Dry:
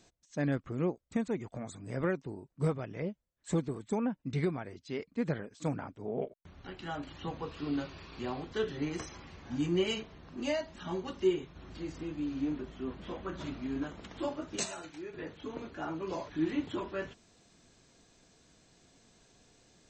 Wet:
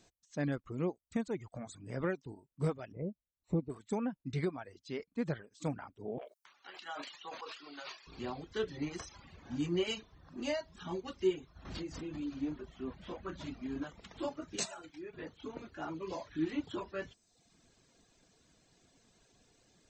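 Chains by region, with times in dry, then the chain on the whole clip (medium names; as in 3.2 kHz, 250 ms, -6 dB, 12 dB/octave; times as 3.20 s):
2.92–3.70 s: boxcar filter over 27 samples + peaking EQ 61 Hz +3.5 dB 2.8 oct
6.18–8.07 s: high-pass 780 Hz + transient shaper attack +2 dB, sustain +12 dB
11.65–12.40 s: hum notches 60/120/180/240/300/360/420 Hz + swell ahead of each attack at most 40 dB/s
whole clip: dynamic bell 4.7 kHz, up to +3 dB, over -59 dBFS, Q 1.8; reverb removal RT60 0.77 s; trim -2.5 dB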